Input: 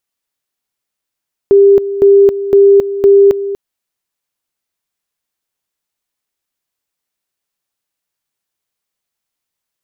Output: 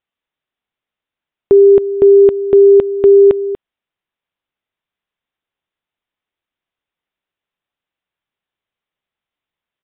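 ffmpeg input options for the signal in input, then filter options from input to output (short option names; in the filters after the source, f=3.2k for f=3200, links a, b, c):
-f lavfi -i "aevalsrc='pow(10,(-2.5-13*gte(mod(t,0.51),0.27))/20)*sin(2*PI*398*t)':d=2.04:s=44100"
-af "aresample=8000,aresample=44100"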